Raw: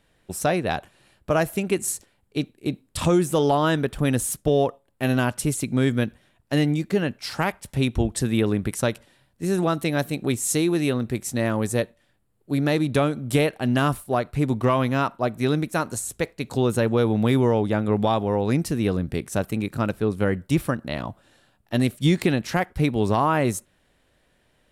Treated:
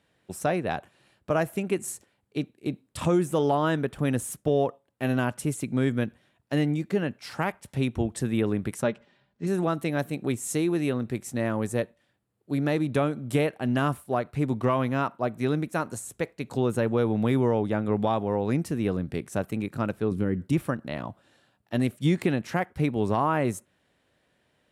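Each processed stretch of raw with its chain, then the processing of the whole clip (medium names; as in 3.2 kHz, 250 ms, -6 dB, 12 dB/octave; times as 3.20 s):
8.83–9.47 s: median filter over 3 samples + distance through air 120 m + comb 4.9 ms, depth 51%
20.11–20.53 s: compression 2:1, threshold -29 dBFS + resonant low shelf 450 Hz +7.5 dB, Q 1.5
whole clip: dynamic bell 4.4 kHz, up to -6 dB, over -45 dBFS, Q 1.2; high-pass 89 Hz; treble shelf 9.3 kHz -7.5 dB; trim -3.5 dB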